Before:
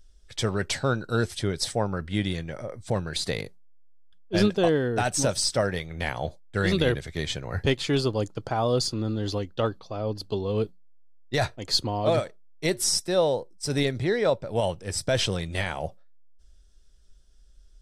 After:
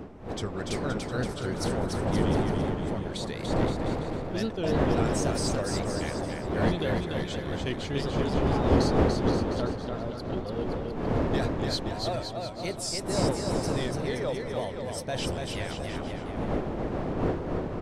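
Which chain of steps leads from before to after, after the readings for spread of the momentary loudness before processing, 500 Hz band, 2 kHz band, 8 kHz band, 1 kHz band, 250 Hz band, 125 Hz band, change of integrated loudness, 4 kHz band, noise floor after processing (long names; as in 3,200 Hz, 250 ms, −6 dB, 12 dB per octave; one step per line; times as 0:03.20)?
8 LU, −2.5 dB, −5.0 dB, −7.0 dB, −0.5 dB, +1.0 dB, −0.5 dB, −2.5 dB, −6.5 dB, −36 dBFS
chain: wind on the microphone 440 Hz −23 dBFS
tape wow and flutter 130 cents
bouncing-ball delay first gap 290 ms, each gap 0.8×, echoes 5
level −9 dB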